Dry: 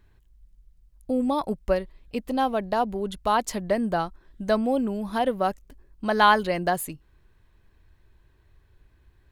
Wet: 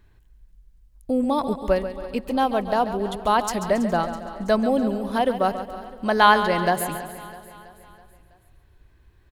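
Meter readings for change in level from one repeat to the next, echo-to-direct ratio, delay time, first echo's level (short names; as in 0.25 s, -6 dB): no steady repeat, -8.5 dB, 0.138 s, -11.0 dB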